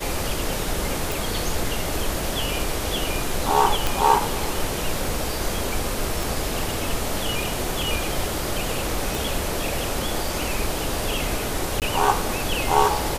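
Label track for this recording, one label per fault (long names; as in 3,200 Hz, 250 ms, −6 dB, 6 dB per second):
1.120000	1.120000	click
3.870000	3.870000	click
6.230000	6.230000	click
9.150000	9.150000	click
11.800000	11.820000	drop-out 18 ms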